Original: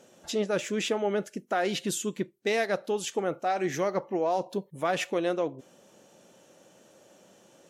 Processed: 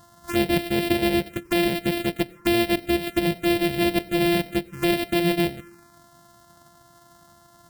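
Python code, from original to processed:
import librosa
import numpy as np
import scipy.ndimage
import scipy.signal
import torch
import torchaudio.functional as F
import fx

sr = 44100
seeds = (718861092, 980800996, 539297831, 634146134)

y = np.r_[np.sort(x[:len(x) // 128 * 128].reshape(-1, 128), axis=1).ravel(), x[len(x) // 128 * 128:]]
y = fx.rev_plate(y, sr, seeds[0], rt60_s=0.84, hf_ratio=0.5, predelay_ms=80, drr_db=20.0)
y = fx.env_phaser(y, sr, low_hz=400.0, high_hz=1200.0, full_db=-27.5)
y = F.gain(torch.from_numpy(y), 8.5).numpy()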